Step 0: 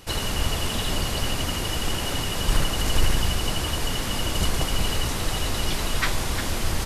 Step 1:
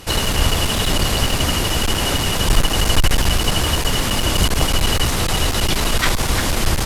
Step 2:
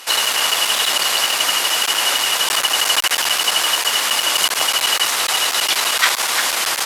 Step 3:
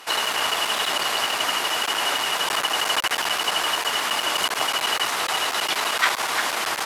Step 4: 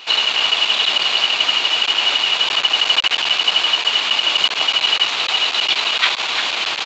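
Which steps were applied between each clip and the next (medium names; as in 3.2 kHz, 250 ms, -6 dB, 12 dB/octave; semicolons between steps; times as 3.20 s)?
one-sided clip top -24 dBFS; trim +9 dB
high-pass 910 Hz 12 dB/octave; trim +5 dB
treble shelf 2.5 kHz -11.5 dB; band-stop 530 Hz, Q 12
high-order bell 3.2 kHz +11 dB 1.1 oct; resampled via 16 kHz; trim -1 dB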